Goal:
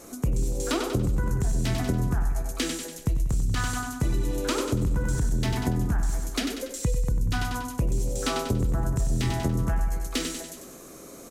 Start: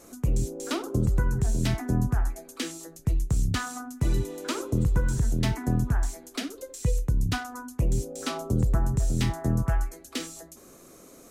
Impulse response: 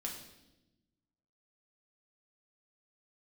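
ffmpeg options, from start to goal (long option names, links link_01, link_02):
-af "aecho=1:1:95|190|285|380|475|570:0.447|0.228|0.116|0.0593|0.0302|0.0154,alimiter=limit=-18dB:level=0:latency=1:release=12,acompressor=threshold=-26dB:ratio=6,volume=5dB"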